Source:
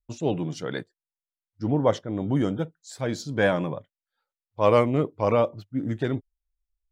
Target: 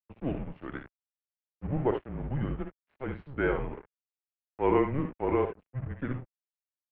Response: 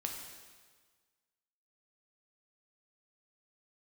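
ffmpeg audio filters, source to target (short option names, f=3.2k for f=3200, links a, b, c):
-af "aecho=1:1:57|73:0.376|0.335,aeval=exprs='sgn(val(0))*max(abs(val(0))-0.0133,0)':c=same,highpass=f=160:t=q:w=0.5412,highpass=f=160:t=q:w=1.307,lowpass=f=2.7k:t=q:w=0.5176,lowpass=f=2.7k:t=q:w=0.7071,lowpass=f=2.7k:t=q:w=1.932,afreqshift=-140,volume=-5.5dB"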